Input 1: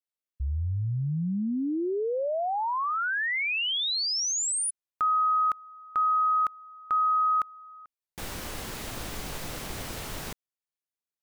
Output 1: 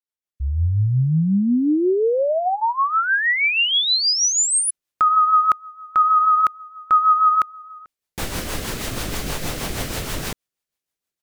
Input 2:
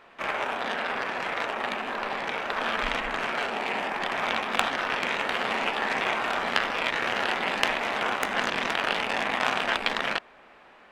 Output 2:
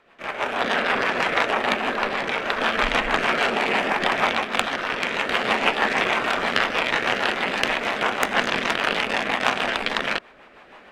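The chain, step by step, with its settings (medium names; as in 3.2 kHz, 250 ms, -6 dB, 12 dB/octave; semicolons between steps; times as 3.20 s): rotary cabinet horn 6.3 Hz; level rider gain up to 13 dB; trim -1 dB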